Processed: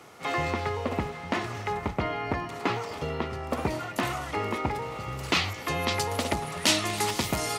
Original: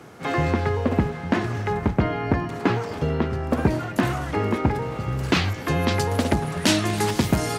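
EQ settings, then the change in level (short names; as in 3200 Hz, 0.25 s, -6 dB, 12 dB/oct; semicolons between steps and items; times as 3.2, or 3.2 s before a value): bell 200 Hz -3.5 dB 2.1 oct; low shelf 490 Hz -9 dB; notch 1600 Hz, Q 6; 0.0 dB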